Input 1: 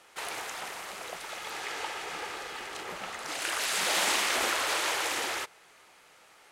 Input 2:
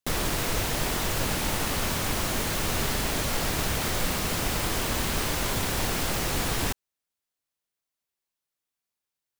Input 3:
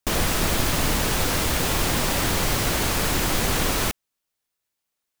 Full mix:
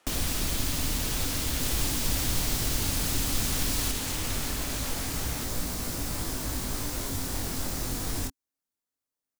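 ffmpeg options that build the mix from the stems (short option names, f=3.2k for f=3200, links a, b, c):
-filter_complex "[0:a]volume=-7dB[a];[1:a]equalizer=f=2.9k:t=o:w=1.1:g=-6.5,flanger=delay=17:depth=6.6:speed=0.24,adelay=1550,volume=1dB[b];[2:a]volume=-4.5dB[c];[a][b][c]amix=inputs=3:normalize=0,equalizer=f=270:t=o:w=0.36:g=9,acrossover=split=130|3000[d][e][f];[e]acompressor=threshold=-37dB:ratio=4[g];[d][g][f]amix=inputs=3:normalize=0"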